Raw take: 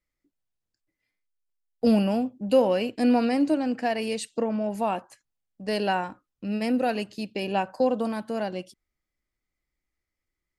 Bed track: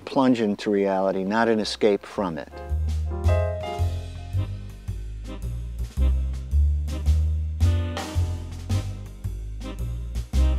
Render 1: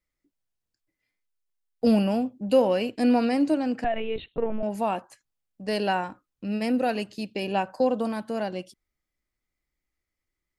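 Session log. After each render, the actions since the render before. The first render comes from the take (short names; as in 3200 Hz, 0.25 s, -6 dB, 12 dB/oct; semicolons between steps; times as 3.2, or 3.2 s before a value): 3.84–4.63 LPC vocoder at 8 kHz pitch kept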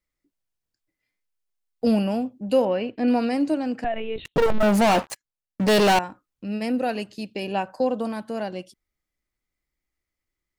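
2.65–3.08 LPF 2800 Hz; 4.25–5.99 sample leveller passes 5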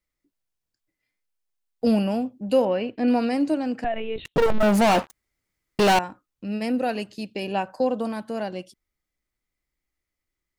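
5.11–5.79 room tone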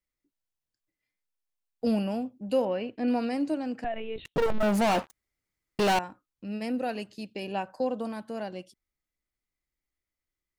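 gain -6 dB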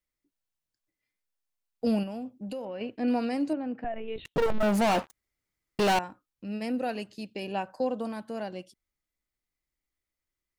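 2.03–2.81 compressor, threshold -33 dBFS; 3.53–4.08 air absorption 460 m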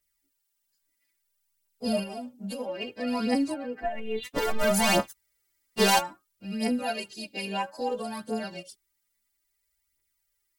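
frequency quantiser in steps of 2 st; phaser 0.6 Hz, delay 4.6 ms, feedback 61%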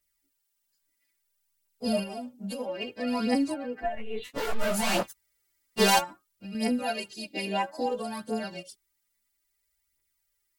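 3.95–5.03 detuned doubles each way 60 cents; 6.04–6.55 compressor, threshold -36 dBFS; 7.3–7.86 small resonant body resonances 310/660/2000/3600 Hz, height 11 dB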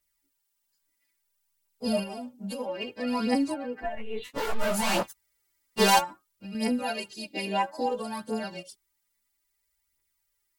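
bell 920 Hz +4 dB 0.55 oct; notch 710 Hz, Q 19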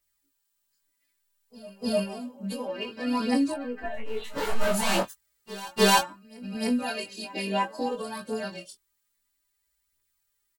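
doubler 21 ms -5.5 dB; reverse echo 0.303 s -19 dB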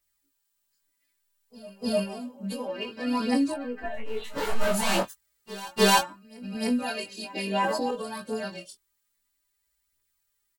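7.43–7.91 sustainer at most 36 dB/s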